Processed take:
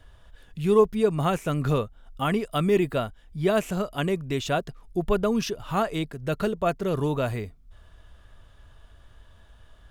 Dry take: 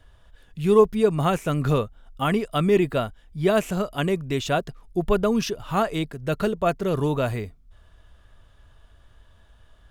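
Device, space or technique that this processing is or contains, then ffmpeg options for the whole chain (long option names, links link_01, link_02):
parallel compression: -filter_complex "[0:a]asettb=1/sr,asplit=3[link_01][link_02][link_03];[link_01]atrim=end=2.424[link_04];[link_02]atrim=start=2.42:end=2.95,asetpts=PTS-STARTPTS,afade=type=in:duration=0.004:curve=qsin,afade=type=out:start_time=0.526:duration=0.004:curve=qsin,highshelf=frequency=9800:gain=5.5[link_05];[link_03]atrim=start=2.946[link_06];[link_04][link_05]acrossfade=duration=0.004:curve1=hsin:curve2=qsin[link_07];[link_07][link_06]acrossfade=duration=0.004:curve1=qsin:curve2=hsin,asplit=2[link_08][link_09];[link_09]acompressor=threshold=-40dB:ratio=6,volume=-3dB[link_10];[link_08][link_10]amix=inputs=2:normalize=0,volume=-3dB"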